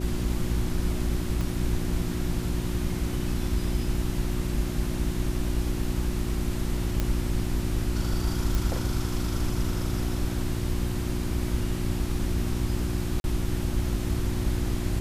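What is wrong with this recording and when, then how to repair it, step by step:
hum 60 Hz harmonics 6 -31 dBFS
1.41 s: pop
7.00 s: pop -12 dBFS
8.55 s: pop
13.20–13.24 s: dropout 41 ms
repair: de-click; de-hum 60 Hz, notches 6; interpolate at 13.20 s, 41 ms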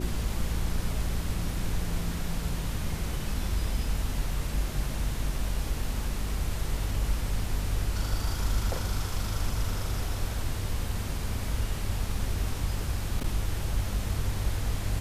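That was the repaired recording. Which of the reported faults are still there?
1.41 s: pop

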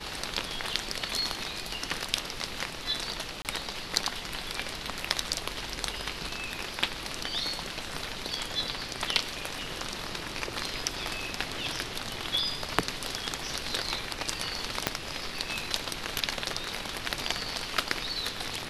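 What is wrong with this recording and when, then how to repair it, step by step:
3.42–3.45 s: dropout 28 ms
14.87 s: pop -7 dBFS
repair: de-click; interpolate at 3.42 s, 28 ms

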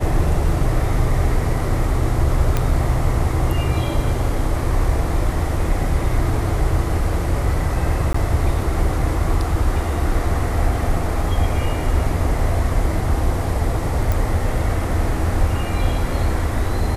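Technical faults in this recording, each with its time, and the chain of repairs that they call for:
2.57 s: pop -6 dBFS
8.13–8.14 s: dropout 14 ms
14.12 s: pop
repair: de-click; interpolate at 8.13 s, 14 ms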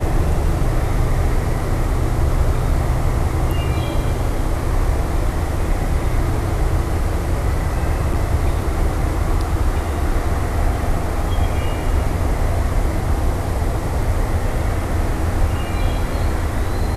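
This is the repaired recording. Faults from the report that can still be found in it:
nothing left

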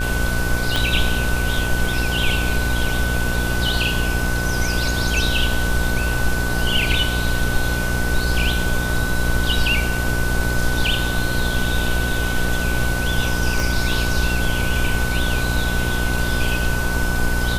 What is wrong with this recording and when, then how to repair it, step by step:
buzz 60 Hz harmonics 22 -23 dBFS
whine 1.5 kHz -25 dBFS
0.76 s: pop
13.60 s: pop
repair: de-click; band-stop 1.5 kHz, Q 30; de-hum 60 Hz, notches 22

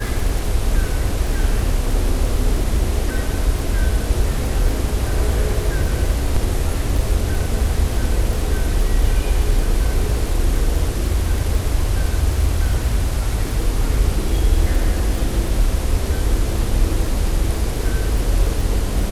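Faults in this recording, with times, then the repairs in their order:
crackle 38 per s -25 dBFS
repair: de-click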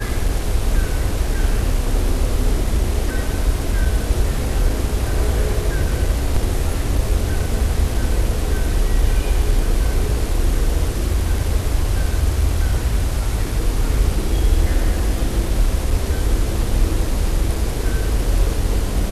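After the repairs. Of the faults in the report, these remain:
nothing left

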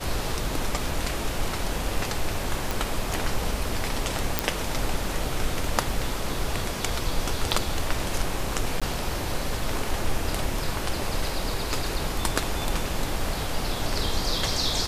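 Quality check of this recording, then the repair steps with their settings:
2.71 s: pop
4.39 s: pop -3 dBFS
8.80–8.82 s: dropout 16 ms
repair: de-click; interpolate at 8.80 s, 16 ms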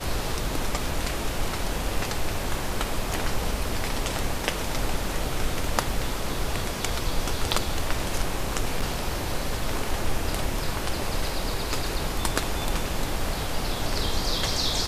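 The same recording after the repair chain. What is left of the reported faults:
nothing left

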